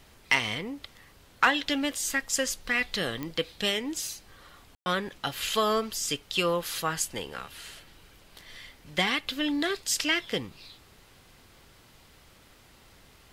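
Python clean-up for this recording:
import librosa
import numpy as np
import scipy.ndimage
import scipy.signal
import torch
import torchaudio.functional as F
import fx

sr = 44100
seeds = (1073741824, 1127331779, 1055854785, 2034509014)

y = fx.fix_declick_ar(x, sr, threshold=10.0)
y = fx.fix_ambience(y, sr, seeds[0], print_start_s=12.34, print_end_s=12.84, start_s=4.75, end_s=4.86)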